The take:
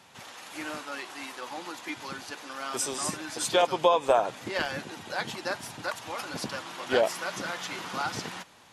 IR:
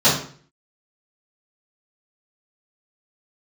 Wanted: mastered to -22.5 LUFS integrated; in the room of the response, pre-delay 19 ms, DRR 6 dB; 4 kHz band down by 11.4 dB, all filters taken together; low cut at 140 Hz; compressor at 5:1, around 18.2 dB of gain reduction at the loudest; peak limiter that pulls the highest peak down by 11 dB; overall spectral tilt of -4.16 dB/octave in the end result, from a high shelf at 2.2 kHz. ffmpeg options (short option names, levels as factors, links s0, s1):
-filter_complex "[0:a]highpass=140,highshelf=f=2200:g=-8.5,equalizer=f=4000:t=o:g=-7,acompressor=threshold=0.0112:ratio=5,alimiter=level_in=3.98:limit=0.0631:level=0:latency=1,volume=0.251,asplit=2[s0][s1];[1:a]atrim=start_sample=2205,adelay=19[s2];[s1][s2]afir=irnorm=-1:irlink=0,volume=0.0422[s3];[s0][s3]amix=inputs=2:normalize=0,volume=13.3"